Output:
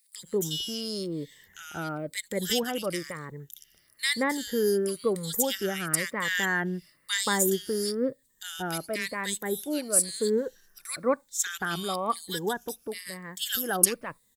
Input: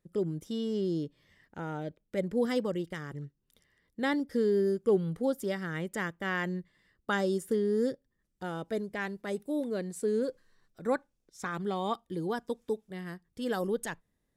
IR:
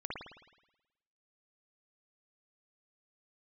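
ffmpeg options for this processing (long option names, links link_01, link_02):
-filter_complex "[0:a]afftfilt=real='re*pow(10,10/40*sin(2*PI*(0.95*log(max(b,1)*sr/1024/100)/log(2)-(-1)*(pts-256)/sr)))':imag='im*pow(10,10/40*sin(2*PI*(0.95*log(max(b,1)*sr/1024/100)/log(2)-(-1)*(pts-256)/sr)))':win_size=1024:overlap=0.75,acrossover=split=1800[link_01][link_02];[link_01]adelay=180[link_03];[link_03][link_02]amix=inputs=2:normalize=0,crystalizer=i=10:c=0,volume=-1dB"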